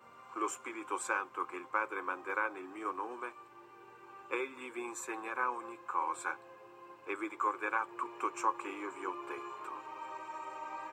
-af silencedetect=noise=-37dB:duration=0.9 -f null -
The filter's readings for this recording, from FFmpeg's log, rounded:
silence_start: 3.29
silence_end: 4.31 | silence_duration: 1.02